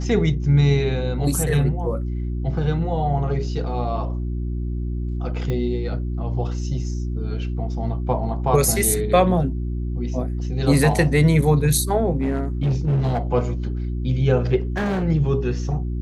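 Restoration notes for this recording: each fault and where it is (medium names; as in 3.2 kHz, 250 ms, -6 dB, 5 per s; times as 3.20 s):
hum 60 Hz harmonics 6 -25 dBFS
5.50 s: pop -15 dBFS
12.16–13.19 s: clipped -16.5 dBFS
14.60–15.04 s: clipped -20 dBFS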